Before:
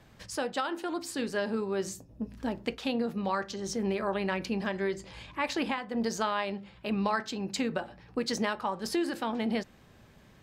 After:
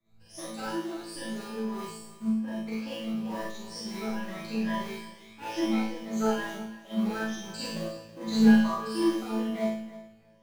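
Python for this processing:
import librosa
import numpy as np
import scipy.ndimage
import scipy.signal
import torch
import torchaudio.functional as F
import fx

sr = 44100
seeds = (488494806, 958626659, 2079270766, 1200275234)

p1 = fx.spec_ripple(x, sr, per_octave=1.2, drift_hz=2.3, depth_db=22)
p2 = fx.low_shelf(p1, sr, hz=380.0, db=7.5, at=(7.81, 8.7))
p3 = fx.sample_hold(p2, sr, seeds[0], rate_hz=1300.0, jitter_pct=20)
p4 = p2 + (p3 * 10.0 ** (-7.5 / 20.0))
p5 = fx.resonator_bank(p4, sr, root=45, chord='fifth', decay_s=0.7)
p6 = fx.echo_thinned(p5, sr, ms=324, feedback_pct=28, hz=160.0, wet_db=-13)
p7 = fx.rev_schroeder(p6, sr, rt60_s=0.35, comb_ms=32, drr_db=-4.5)
p8 = fx.band_widen(p7, sr, depth_pct=40)
y = p8 * 10.0 ** (3.5 / 20.0)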